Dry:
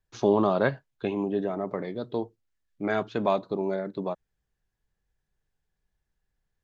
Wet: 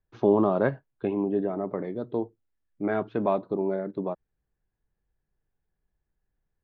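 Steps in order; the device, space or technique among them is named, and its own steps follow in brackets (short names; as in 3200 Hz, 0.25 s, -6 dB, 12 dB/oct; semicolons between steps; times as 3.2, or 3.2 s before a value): phone in a pocket (LPF 3000 Hz 12 dB/oct; bell 320 Hz +3 dB; high shelf 2200 Hz -10 dB)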